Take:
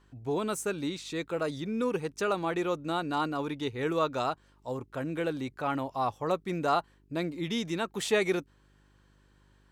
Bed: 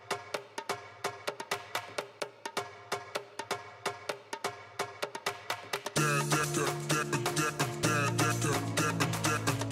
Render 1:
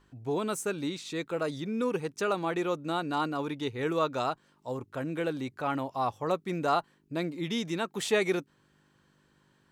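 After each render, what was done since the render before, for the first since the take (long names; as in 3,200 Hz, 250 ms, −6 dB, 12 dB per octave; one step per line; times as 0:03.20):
hum removal 50 Hz, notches 2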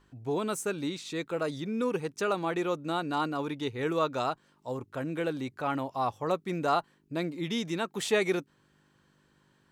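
no processing that can be heard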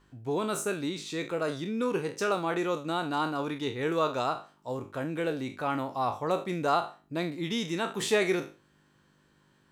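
peak hold with a decay on every bin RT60 0.34 s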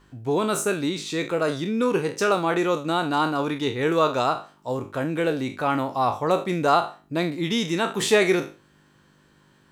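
level +7 dB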